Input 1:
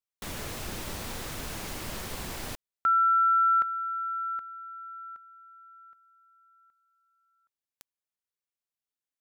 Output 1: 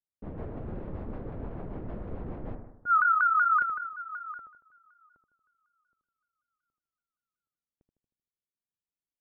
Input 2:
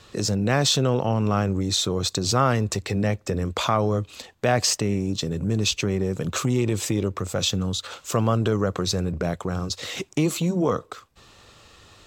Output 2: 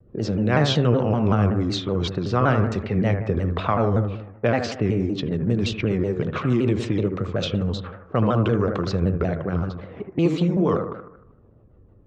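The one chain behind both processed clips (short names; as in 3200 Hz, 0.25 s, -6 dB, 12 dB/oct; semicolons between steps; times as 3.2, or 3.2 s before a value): rotary speaker horn 6.7 Hz; LPF 3000 Hz 12 dB/oct; low-pass opened by the level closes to 330 Hz, open at -21.5 dBFS; on a send: analogue delay 77 ms, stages 1024, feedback 53%, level -6.5 dB; on the sum: shaped vibrato saw down 5.3 Hz, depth 160 cents; gain +3 dB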